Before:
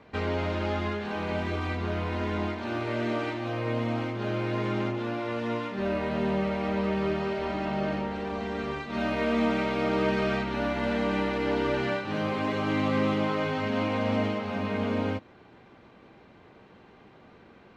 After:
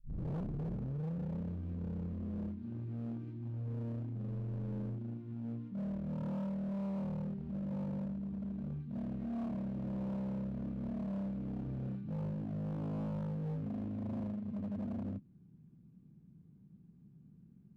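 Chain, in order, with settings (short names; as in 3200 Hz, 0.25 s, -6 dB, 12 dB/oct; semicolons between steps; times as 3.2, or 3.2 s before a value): tape start at the beginning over 1.38 s; EQ curve 100 Hz 0 dB, 160 Hz +13 dB, 570 Hz -29 dB; hard clip -29 dBFS, distortion -8 dB; notch 2000 Hz, Q 14; running maximum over 5 samples; gain -7 dB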